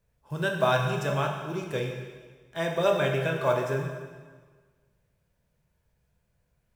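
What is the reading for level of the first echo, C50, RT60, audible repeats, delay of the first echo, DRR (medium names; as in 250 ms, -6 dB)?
no echo, 4.5 dB, 1.5 s, no echo, no echo, 1.0 dB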